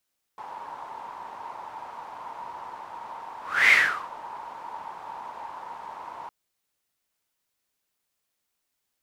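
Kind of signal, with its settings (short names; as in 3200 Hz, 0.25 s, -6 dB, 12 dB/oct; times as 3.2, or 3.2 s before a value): whoosh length 5.91 s, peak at 3.32, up 0.30 s, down 0.43 s, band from 930 Hz, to 2100 Hz, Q 8.4, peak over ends 22.5 dB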